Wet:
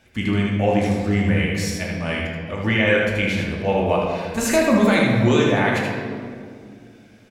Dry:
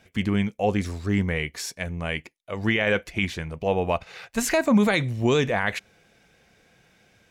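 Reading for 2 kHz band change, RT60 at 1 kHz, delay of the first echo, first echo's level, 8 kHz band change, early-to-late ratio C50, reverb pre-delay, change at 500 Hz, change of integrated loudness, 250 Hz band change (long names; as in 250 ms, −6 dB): +5.0 dB, 2.0 s, 78 ms, −4.0 dB, +3.0 dB, −0.5 dB, 3 ms, +5.5 dB, +5.0 dB, +5.5 dB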